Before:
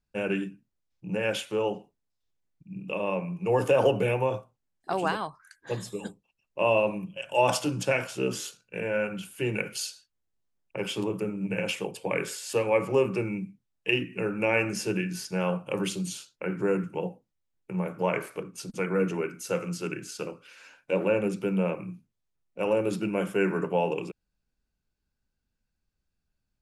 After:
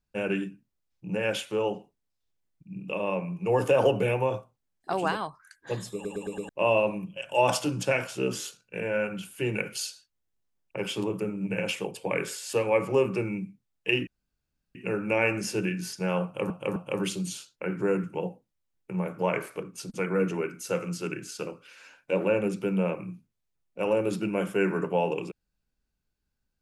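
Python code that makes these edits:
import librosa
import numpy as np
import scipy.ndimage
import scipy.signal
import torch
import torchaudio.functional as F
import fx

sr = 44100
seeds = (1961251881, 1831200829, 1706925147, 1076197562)

y = fx.edit(x, sr, fx.stutter_over(start_s=5.94, slice_s=0.11, count=5),
    fx.insert_room_tone(at_s=14.07, length_s=0.68),
    fx.repeat(start_s=15.56, length_s=0.26, count=3), tone=tone)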